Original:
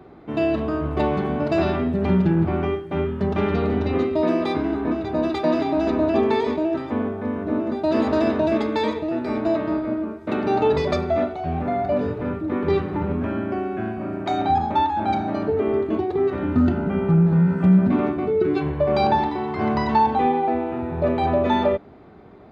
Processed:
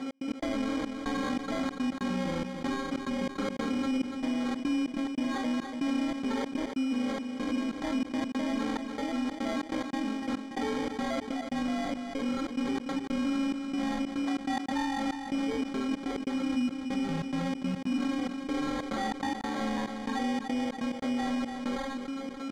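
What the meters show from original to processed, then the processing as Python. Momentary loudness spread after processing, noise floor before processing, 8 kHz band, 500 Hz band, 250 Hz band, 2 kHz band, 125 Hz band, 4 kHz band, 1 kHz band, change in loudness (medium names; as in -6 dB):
3 LU, -37 dBFS, no reading, -16.0 dB, -7.5 dB, -5.0 dB, -20.0 dB, -2.5 dB, -13.0 dB, -10.0 dB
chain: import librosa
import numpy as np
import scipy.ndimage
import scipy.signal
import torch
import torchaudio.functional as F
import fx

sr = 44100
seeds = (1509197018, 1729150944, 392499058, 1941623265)

p1 = fx.rattle_buzz(x, sr, strikes_db=-28.0, level_db=-20.0)
p2 = scipy.signal.sosfilt(scipy.signal.butter(2, 130.0, 'highpass', fs=sr, output='sos'), p1)
p3 = fx.peak_eq(p2, sr, hz=250.0, db=4.0, octaves=0.26)
p4 = p3 + 0.84 * np.pad(p3, (int(4.3 * sr / 1000.0), 0))[:len(p3)]
p5 = fx.rider(p4, sr, range_db=10, speed_s=0.5)
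p6 = p4 + (p5 * 10.0 ** (-2.0 / 20.0))
p7 = fx.comb_fb(p6, sr, f0_hz=270.0, decay_s=0.79, harmonics='all', damping=0.0, mix_pct=100)
p8 = fx.wow_flutter(p7, sr, seeds[0], rate_hz=2.1, depth_cents=17.0)
p9 = fx.step_gate(p8, sr, bpm=142, pattern='x.x.xxxx..xxx.x', floor_db=-60.0, edge_ms=4.5)
p10 = fx.sample_hold(p9, sr, seeds[1], rate_hz=2700.0, jitter_pct=0)
p11 = fx.air_absorb(p10, sr, metres=84.0)
p12 = p11 + fx.echo_feedback(p11, sr, ms=289, feedback_pct=34, wet_db=-21.5, dry=0)
y = fx.env_flatten(p12, sr, amount_pct=70)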